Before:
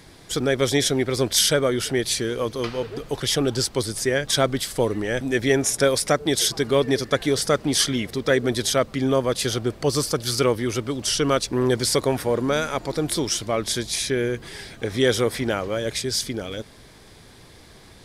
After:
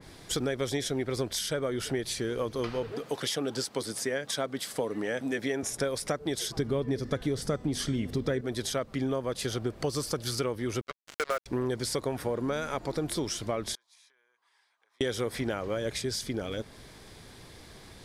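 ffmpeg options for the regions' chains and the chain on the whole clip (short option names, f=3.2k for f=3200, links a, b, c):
-filter_complex "[0:a]asettb=1/sr,asplit=3[a][b][c];[a]atrim=end=2.924[d];[b]atrim=start=2.92:end=5.63,asetpts=PTS-STARTPTS,afade=t=in:d=0.004:c=qsin,afade=t=out:st=2.706:d=0.004:c=qsin,highpass=200,bandreject=f=360:w=7[e];[c]atrim=start=5.626[f];[d][e]acrossfade=d=0.004:c1=hsin:c2=qsin[g];[g][f]acrossfade=d=0.004:c1=qsin:c2=hsin,asettb=1/sr,asplit=3[h][i][j];[h]atrim=end=6.574[k];[i]atrim=start=6.57:end=8.41,asetpts=PTS-STARTPTS,afade=t=in:d=0.004:c=qsin,afade=t=out:st=1.836:d=0.004:c=qsin,lowshelf=f=330:g=11,bandreject=f=249.8:t=h:w=4,bandreject=f=499.6:t=h:w=4,bandreject=f=749.4:t=h:w=4,bandreject=f=999.2:t=h:w=4,bandreject=f=1.249k:t=h:w=4,bandreject=f=1.4988k:t=h:w=4,bandreject=f=1.7486k:t=h:w=4,bandreject=f=1.9984k:t=h:w=4,bandreject=f=2.2482k:t=h:w=4,bandreject=f=2.498k:t=h:w=4,bandreject=f=2.7478k:t=h:w=4,bandreject=f=2.9976k:t=h:w=4,bandreject=f=3.2474k:t=h:w=4,bandreject=f=3.4972k:t=h:w=4,bandreject=f=3.747k:t=h:w=4,bandreject=f=3.9968k:t=h:w=4,bandreject=f=4.2466k:t=h:w=4,bandreject=f=4.4964k:t=h:w=4,bandreject=f=4.7462k:t=h:w=4,bandreject=f=4.996k:t=h:w=4,bandreject=f=5.2458k:t=h:w=4,bandreject=f=5.4956k:t=h:w=4,bandreject=f=5.7454k:t=h:w=4,bandreject=f=5.9952k:t=h:w=4,bandreject=f=6.245k:t=h:w=4,bandreject=f=6.4948k:t=h:w=4,bandreject=f=6.7446k:t=h:w=4,bandreject=f=6.9944k:t=h:w=4,bandreject=f=7.2442k:t=h:w=4,bandreject=f=7.494k:t=h:w=4,bandreject=f=7.7438k:t=h:w=4,bandreject=f=7.9936k:t=h:w=4,bandreject=f=8.2434k:t=h:w=4,bandreject=f=8.4932k:t=h:w=4[l];[j]atrim=start=8.406[m];[k][l]acrossfade=d=0.004:c1=hsin:c2=qsin[n];[n][m]acrossfade=d=0.004:c1=qsin:c2=hsin,asettb=1/sr,asplit=3[o][p][q];[o]atrim=end=10.814[r];[p]atrim=start=10.81:end=11.46,asetpts=PTS-STARTPTS,afade=t=in:d=0.004:c=qsin,afade=t=out:st=0.646:d=0.004:c=qsin,highpass=f=480:w=0.5412,highpass=f=480:w=1.3066,equalizer=f=590:t=q:w=4:g=6,equalizer=f=880:t=q:w=4:g=-9,equalizer=f=1.4k:t=q:w=4:g=8,equalizer=f=2.1k:t=q:w=4:g=6,lowpass=f=2.3k:w=0.5412,lowpass=f=2.3k:w=1.3066,acrusher=bits=3:mix=0:aa=0.5[s];[q]atrim=start=11.456[t];[r][s]acrossfade=d=0.004:c1=hsin:c2=qsin[u];[u][t]acrossfade=d=0.004:c1=qsin:c2=hsin,asettb=1/sr,asplit=3[v][w][x];[v]atrim=end=13.754[y];[w]atrim=start=13.75:end=15.01,asetpts=PTS-STARTPTS,afade=t=in:d=0.004:c=qsin,afade=t=out:st=1.256:d=0.004:c=qsin,bandpass=f=1k:t=q:w=4.8,acompressor=threshold=-48dB:ratio=4:attack=3.2:release=140:knee=1:detection=peak,aderivative[z];[x]atrim=start=15.006[aa];[y][z]acrossfade=d=0.004:c1=hsin:c2=qsin[ab];[ab][aa]acrossfade=d=0.004:c1=qsin:c2=hsin,acompressor=threshold=-25dB:ratio=6,adynamicequalizer=threshold=0.00631:dfrequency=2100:dqfactor=0.7:tfrequency=2100:tqfactor=0.7:attack=5:release=100:ratio=0.375:range=2:mode=cutabove:tftype=highshelf,volume=-2dB"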